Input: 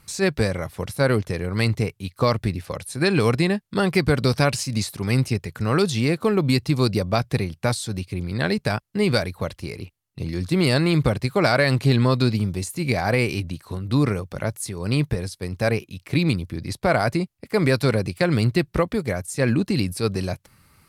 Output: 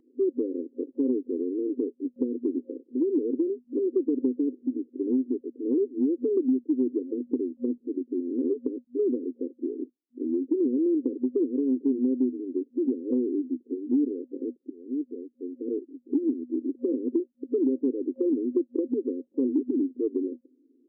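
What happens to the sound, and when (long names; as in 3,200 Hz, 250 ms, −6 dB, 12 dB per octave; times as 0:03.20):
0:01.58–0:03.85: spectral envelope flattened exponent 0.6
0:14.70–0:16.39: fade in, from −18.5 dB
whole clip: brick-wall band-pass 240–530 Hz; comb filter 1 ms, depth 85%; downward compressor 4 to 1, threshold −31 dBFS; level +8 dB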